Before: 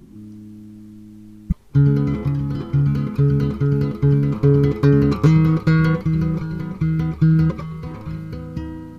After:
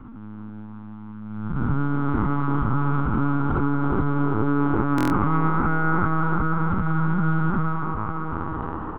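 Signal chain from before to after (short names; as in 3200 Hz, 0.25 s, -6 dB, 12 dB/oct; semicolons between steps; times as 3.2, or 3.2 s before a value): time blur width 0.559 s; LPF 2400 Hz 24 dB/oct; in parallel at -10 dB: short-mantissa float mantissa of 2-bit; on the sum: doubler 46 ms -12.5 dB; limiter -15 dBFS, peak gain reduction 9.5 dB; LPC vocoder at 8 kHz pitch kept; band shelf 1100 Hz +15 dB 1.1 oct; on a send: band-limited delay 0.337 s, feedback 50%, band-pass 610 Hz, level -4 dB; on the sum: stuck buffer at 4.96, samples 1024, times 5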